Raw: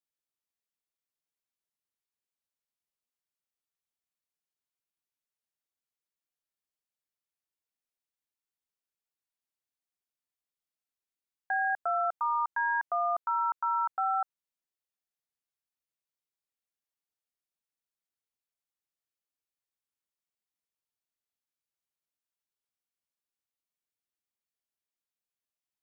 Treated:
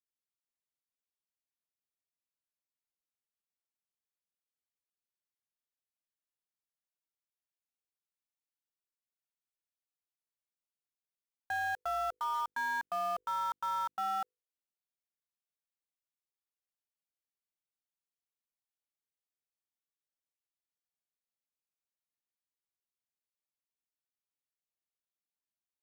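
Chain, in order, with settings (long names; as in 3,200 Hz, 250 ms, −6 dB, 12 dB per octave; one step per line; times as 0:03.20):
low-shelf EQ 350 Hz +2 dB
mains-hum notches 50/100/150/200/250/300/350/400/450/500 Hz
in parallel at −9 dB: log-companded quantiser 2 bits
on the sum: level −8.5 dB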